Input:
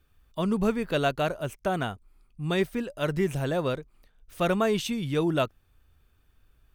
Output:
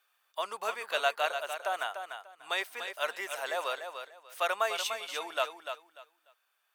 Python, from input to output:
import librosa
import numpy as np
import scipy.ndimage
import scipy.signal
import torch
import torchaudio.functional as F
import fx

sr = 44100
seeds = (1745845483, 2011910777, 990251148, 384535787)

y = scipy.signal.sosfilt(scipy.signal.butter(4, 690.0, 'highpass', fs=sr, output='sos'), x)
y = fx.rider(y, sr, range_db=3, speed_s=2.0)
y = fx.echo_feedback(y, sr, ms=295, feedback_pct=22, wet_db=-8)